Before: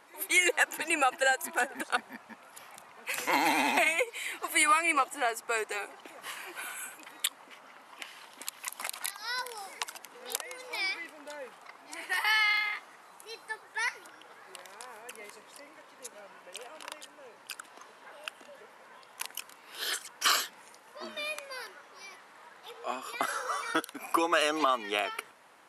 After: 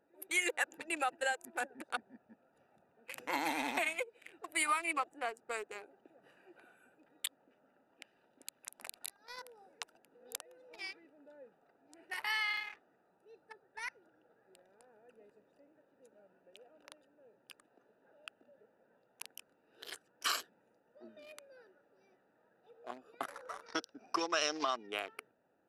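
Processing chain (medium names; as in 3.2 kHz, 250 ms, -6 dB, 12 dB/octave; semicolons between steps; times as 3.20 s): local Wiener filter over 41 samples; 23.66–24.87 s: resonant low-pass 5.4 kHz, resonance Q 8.8; trim -7.5 dB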